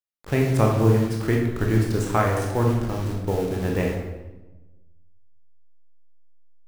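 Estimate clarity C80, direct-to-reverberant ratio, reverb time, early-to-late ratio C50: 5.5 dB, −1.0 dB, 1.1 s, 3.0 dB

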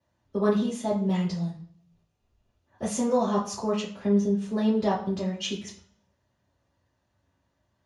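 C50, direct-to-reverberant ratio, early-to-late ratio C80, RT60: 7.5 dB, −11.0 dB, 12.0 dB, 0.55 s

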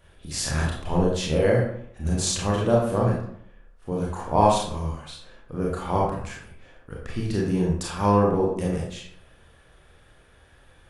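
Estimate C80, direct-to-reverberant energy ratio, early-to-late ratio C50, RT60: 6.0 dB, −4.0 dB, 2.0 dB, 0.65 s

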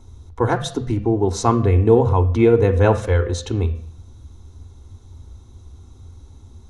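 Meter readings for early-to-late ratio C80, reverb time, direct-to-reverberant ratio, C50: 18.0 dB, 0.65 s, 12.0 dB, 14.5 dB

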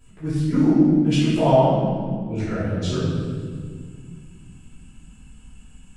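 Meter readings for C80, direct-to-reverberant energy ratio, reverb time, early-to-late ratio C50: 0.0 dB, −14.0 dB, 1.9 s, −2.5 dB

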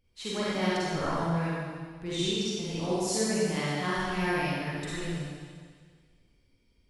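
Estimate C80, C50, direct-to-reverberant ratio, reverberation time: −2.5 dB, −6.0 dB, −10.0 dB, 1.8 s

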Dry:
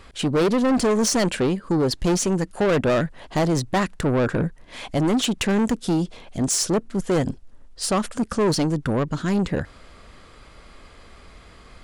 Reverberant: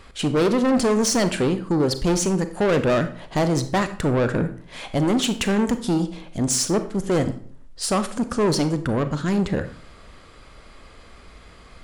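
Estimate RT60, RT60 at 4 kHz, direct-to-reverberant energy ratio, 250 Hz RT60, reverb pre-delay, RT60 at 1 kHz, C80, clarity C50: 0.55 s, 0.40 s, 10.0 dB, 0.55 s, 32 ms, 0.50 s, 16.5 dB, 12.0 dB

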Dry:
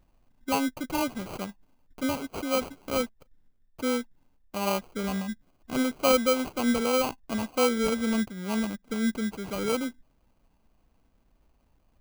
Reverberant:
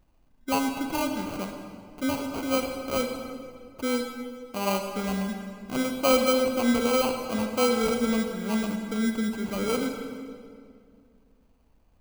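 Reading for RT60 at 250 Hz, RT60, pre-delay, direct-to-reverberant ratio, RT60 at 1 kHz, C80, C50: 2.7 s, 2.2 s, 34 ms, 4.5 dB, 2.0 s, 6.0 dB, 5.0 dB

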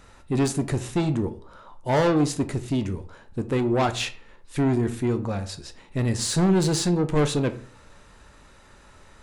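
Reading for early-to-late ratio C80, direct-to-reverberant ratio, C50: 19.0 dB, 9.0 dB, 15.5 dB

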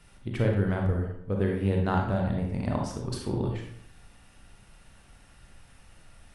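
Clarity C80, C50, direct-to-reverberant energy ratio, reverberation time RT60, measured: 7.0 dB, 2.5 dB, 0.5 dB, 0.65 s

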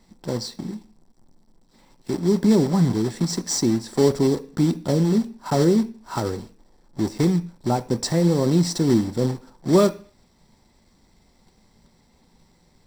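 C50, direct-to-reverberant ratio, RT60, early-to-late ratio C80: 18.0 dB, 10.5 dB, 0.45 s, 23.0 dB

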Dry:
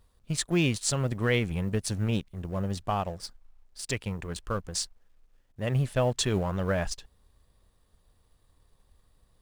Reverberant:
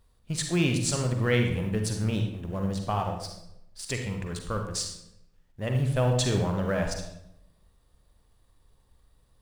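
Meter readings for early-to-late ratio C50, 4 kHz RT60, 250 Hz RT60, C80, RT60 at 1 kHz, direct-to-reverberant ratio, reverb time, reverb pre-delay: 5.0 dB, 0.60 s, 1.0 s, 8.0 dB, 0.75 s, 3.5 dB, 0.80 s, 39 ms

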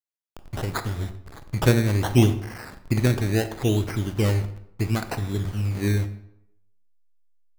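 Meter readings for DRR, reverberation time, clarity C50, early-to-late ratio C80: 9.5 dB, 0.75 s, 12.0 dB, 15.0 dB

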